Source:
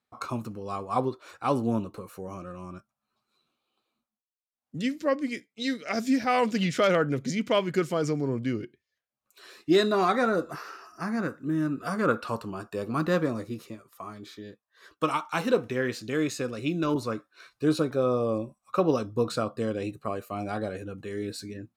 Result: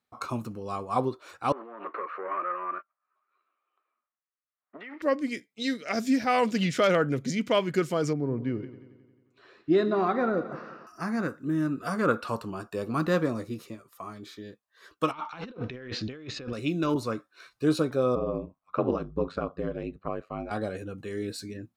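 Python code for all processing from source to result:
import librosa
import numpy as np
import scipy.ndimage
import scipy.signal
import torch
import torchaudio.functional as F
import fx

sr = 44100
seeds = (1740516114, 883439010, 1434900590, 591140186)

y = fx.chain(x, sr, fx.over_compress(threshold_db=-34.0, ratio=-1.0),
    fx.leveller(passes=2),
    fx.cabinet(low_hz=430.0, low_slope=24, high_hz=2200.0, hz=(490.0, 810.0, 1200.0, 1900.0), db=(-6, -7, 8, 5)), at=(1.52, 5.02))
y = fx.chain(y, sr, fx.spacing_loss(db_at_10k=32),
    fx.echo_heads(ms=89, heads='first and second', feedback_pct=53, wet_db=-18), at=(8.13, 10.87))
y = fx.chain(y, sr, fx.over_compress(threshold_db=-39.0, ratio=-1.0),
    fx.lowpass(hz=4600.0, slope=24),
    fx.low_shelf(hz=62.0, db=10.5), at=(15.11, 16.53))
y = fx.chain(y, sr, fx.lowpass(hz=2400.0, slope=12),
    fx.ring_mod(carrier_hz=49.0), at=(18.15, 20.51))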